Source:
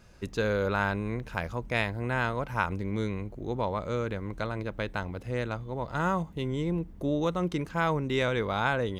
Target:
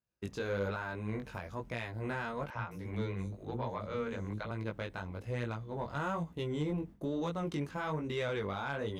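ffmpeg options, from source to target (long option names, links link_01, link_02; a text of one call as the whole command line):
ffmpeg -i in.wav -filter_complex "[0:a]highpass=67,agate=range=-33dB:threshold=-39dB:ratio=3:detection=peak,alimiter=limit=-21dB:level=0:latency=1:release=290,flanger=delay=17:depth=4.6:speed=1.1,asoftclip=type=tanh:threshold=-25dB,asettb=1/sr,asplit=3[link_01][link_02][link_03];[link_01]atrim=end=2.504[link_04];[link_02]atrim=start=2.5:end=4.51,asetpts=PTS-STARTPTS,afade=type=in:duration=0.004:curve=qsin,afade=type=out:start_time=2.006:duration=0.004:curve=qsin,acrossover=split=390|5600[link_05][link_06][link_07];[link_05]adelay=50[link_08];[link_07]adelay=210[link_09];[link_08][link_06][link_09]amix=inputs=3:normalize=0,atrim=end_sample=88641[link_10];[link_03]atrim=start=4.506[link_11];[link_04][link_10]acrossfade=duration=0.004:curve1=hsin:curve2=qsin[link_12];[link_12][link_11]acrossfade=duration=0.004:curve1=qsin:curve2=hsin" out.wav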